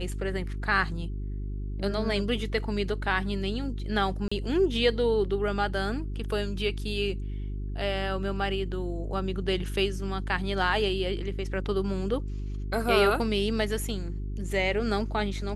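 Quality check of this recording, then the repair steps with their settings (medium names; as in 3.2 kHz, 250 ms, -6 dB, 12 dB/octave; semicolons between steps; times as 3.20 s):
hum 50 Hz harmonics 8 -33 dBFS
4.28–4.32 s: dropout 35 ms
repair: de-hum 50 Hz, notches 8; interpolate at 4.28 s, 35 ms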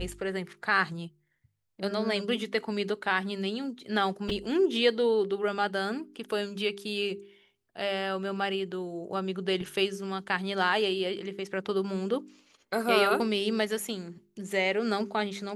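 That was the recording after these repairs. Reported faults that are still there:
nothing left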